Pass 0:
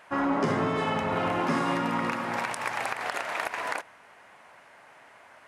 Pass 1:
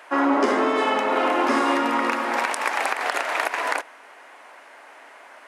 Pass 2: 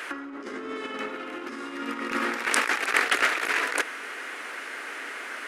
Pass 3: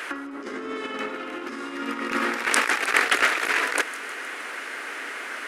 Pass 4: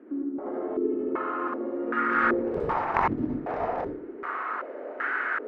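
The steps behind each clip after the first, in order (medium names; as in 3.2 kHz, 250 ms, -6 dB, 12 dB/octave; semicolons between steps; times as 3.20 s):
steep high-pass 250 Hz 48 dB/octave; trim +7 dB
compressor with a negative ratio -29 dBFS, ratio -0.5; high-order bell 770 Hz -11.5 dB 1.1 oct; trim +4.5 dB
feedback echo behind a high-pass 156 ms, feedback 58%, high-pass 5 kHz, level -12.5 dB; trim +2.5 dB
Chebyshev shaper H 7 -13 dB, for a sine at -1 dBFS; reverberation RT60 0.45 s, pre-delay 57 ms, DRR -2 dB; step-sequenced low-pass 2.6 Hz 280–1500 Hz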